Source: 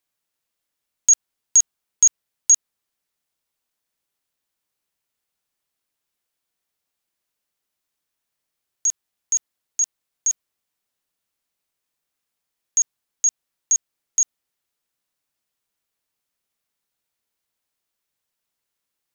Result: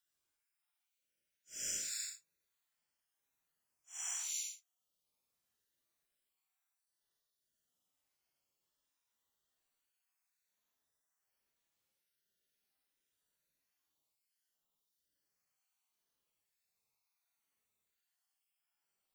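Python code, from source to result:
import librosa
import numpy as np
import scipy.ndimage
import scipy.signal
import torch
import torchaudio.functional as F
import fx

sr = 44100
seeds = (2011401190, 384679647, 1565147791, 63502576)

y = fx.spec_dropout(x, sr, seeds[0], share_pct=31)
y = fx.paulstretch(y, sr, seeds[1], factor=5.1, window_s=0.1, from_s=1.69)
y = F.gain(torch.from_numpy(y), -4.0).numpy()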